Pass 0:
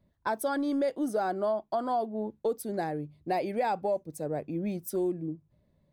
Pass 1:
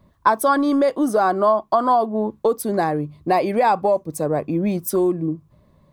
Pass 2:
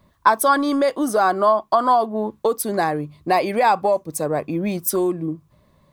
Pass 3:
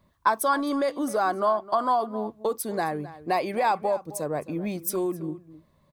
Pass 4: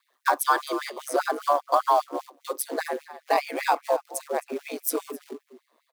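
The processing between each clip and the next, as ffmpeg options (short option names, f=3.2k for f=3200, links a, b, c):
-filter_complex "[0:a]equalizer=f=1.1k:w=4.2:g=13,asplit=2[a][b];[b]acompressor=threshold=-34dB:ratio=6,volume=-2dB[c];[a][c]amix=inputs=2:normalize=0,volume=8dB"
-af "tiltshelf=f=900:g=-4,volume=1dB"
-filter_complex "[0:a]asplit=2[a][b];[b]adelay=262.4,volume=-16dB,highshelf=f=4k:g=-5.9[c];[a][c]amix=inputs=2:normalize=0,volume=-7dB"
-filter_complex "[0:a]asplit=2[a][b];[b]acrusher=bits=3:mode=log:mix=0:aa=0.000001,volume=-7dB[c];[a][c]amix=inputs=2:normalize=0,aeval=exprs='val(0)*sin(2*PI*70*n/s)':c=same,afftfilt=real='re*gte(b*sr/1024,220*pow(2000/220,0.5+0.5*sin(2*PI*5*pts/sr)))':imag='im*gte(b*sr/1024,220*pow(2000/220,0.5+0.5*sin(2*PI*5*pts/sr)))':win_size=1024:overlap=0.75,volume=2.5dB"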